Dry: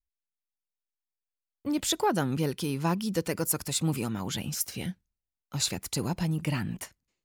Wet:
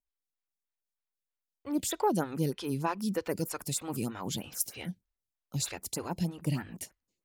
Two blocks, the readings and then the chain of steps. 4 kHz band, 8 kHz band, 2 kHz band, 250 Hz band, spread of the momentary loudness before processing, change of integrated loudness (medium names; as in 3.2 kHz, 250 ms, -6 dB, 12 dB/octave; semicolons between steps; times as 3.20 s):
-7.5 dB, -4.0 dB, -5.5 dB, -3.5 dB, 11 LU, -3.5 dB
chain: vibrato 0.53 Hz 13 cents; lamp-driven phase shifter 3.2 Hz